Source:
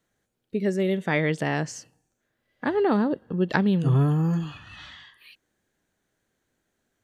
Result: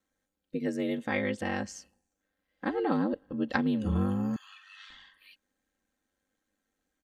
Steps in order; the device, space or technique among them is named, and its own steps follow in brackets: ring-modulated robot voice (ring modulator 49 Hz; comb 3.8 ms, depth 72%); 4.36–4.9 HPF 1200 Hz 24 dB/oct; gain -5 dB

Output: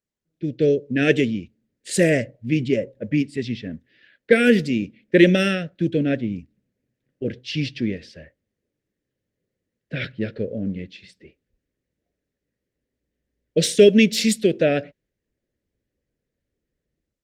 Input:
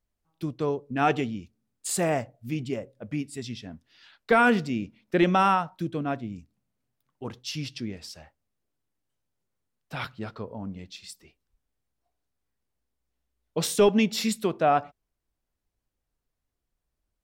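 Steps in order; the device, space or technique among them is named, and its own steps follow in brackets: elliptic band-stop 560–1700 Hz, stop band 70 dB; low-pass opened by the level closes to 1500 Hz, open at -21.5 dBFS; video call (HPF 160 Hz 6 dB/oct; AGC gain up to 12.5 dB; Opus 24 kbps 48000 Hz)

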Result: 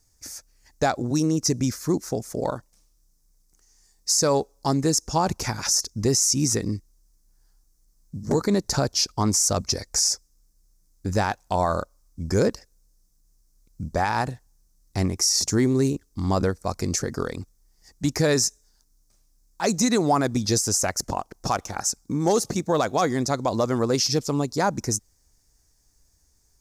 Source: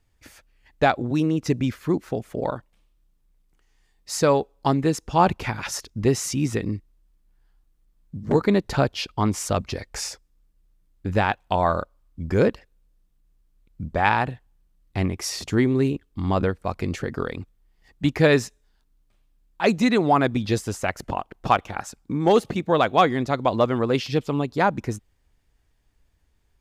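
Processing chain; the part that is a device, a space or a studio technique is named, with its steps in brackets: over-bright horn tweeter (resonant high shelf 4200 Hz +11.5 dB, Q 3; limiter -11.5 dBFS, peak gain reduction 11 dB)

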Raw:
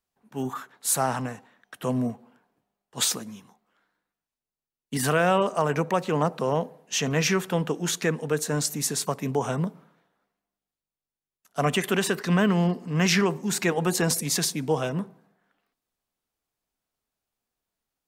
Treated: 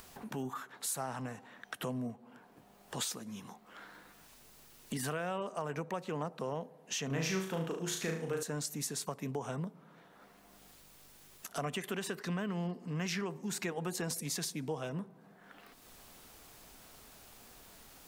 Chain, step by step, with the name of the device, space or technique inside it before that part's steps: upward and downward compression (upward compressor, threshold -32 dBFS; compressor 3:1, threshold -39 dBFS, peak gain reduction 16 dB); 7.06–8.43 flutter echo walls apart 6.3 m, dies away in 0.53 s

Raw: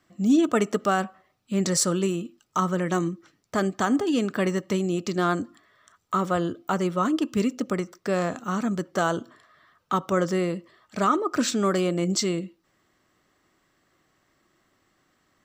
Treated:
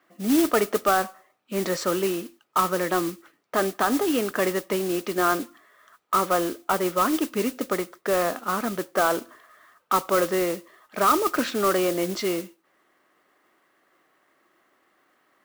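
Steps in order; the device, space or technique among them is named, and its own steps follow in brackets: carbon microphone (BPF 370–2600 Hz; soft clip -16 dBFS, distortion -19 dB; modulation noise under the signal 12 dB); gain +5 dB

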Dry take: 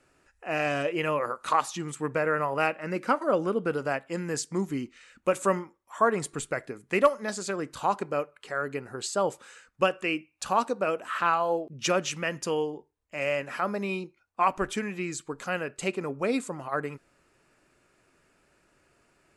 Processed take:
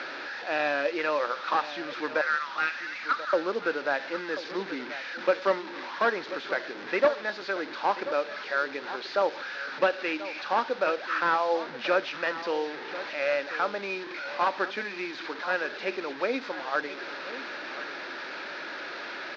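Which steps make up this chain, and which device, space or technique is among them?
2.21–3.33 Chebyshev band-pass 1200–7300 Hz, order 4; digital answering machine (BPF 300–3200 Hz; delta modulation 32 kbps, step -34.5 dBFS; speaker cabinet 390–4300 Hz, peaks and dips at 430 Hz -7 dB, 690 Hz -6 dB, 1100 Hz -6 dB, 1600 Hz +6 dB, 3000 Hz -6 dB); dynamic EQ 1800 Hz, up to -5 dB, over -45 dBFS, Q 1.2; echo 1.036 s -13.5 dB; gain +6.5 dB

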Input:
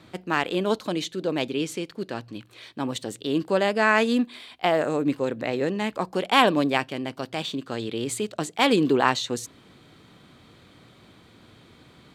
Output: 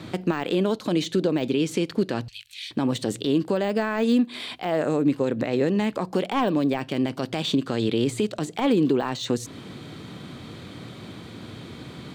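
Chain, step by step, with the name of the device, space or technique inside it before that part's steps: broadcast voice chain (HPF 91 Hz; de-esser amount 80%; compressor 5:1, threshold -32 dBFS, peak gain reduction 14 dB; bell 4900 Hz +3 dB 2.7 oct; limiter -24.5 dBFS, peak gain reduction 11 dB); 2.28–2.71 inverse Chebyshev band-stop 150–830 Hz, stop band 60 dB; low shelf 480 Hz +8.5 dB; gain +7.5 dB

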